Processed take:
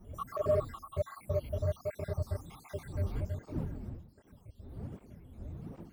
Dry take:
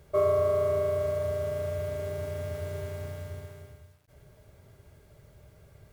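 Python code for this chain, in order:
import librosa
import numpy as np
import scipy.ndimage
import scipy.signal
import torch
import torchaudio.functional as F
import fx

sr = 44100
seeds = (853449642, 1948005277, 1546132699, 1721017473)

p1 = fx.spec_dropout(x, sr, seeds[0], share_pct=72)
p2 = fx.dmg_wind(p1, sr, seeds[1], corner_hz=220.0, level_db=-47.0)
p3 = fx.low_shelf(p2, sr, hz=98.0, db=10.0)
p4 = 10.0 ** (-28.5 / 20.0) * np.tanh(p3 / 10.0 ** (-28.5 / 20.0))
p5 = p3 + (p4 * librosa.db_to_amplitude(-9.5))
y = fx.flanger_cancel(p5, sr, hz=1.3, depth_ms=7.2)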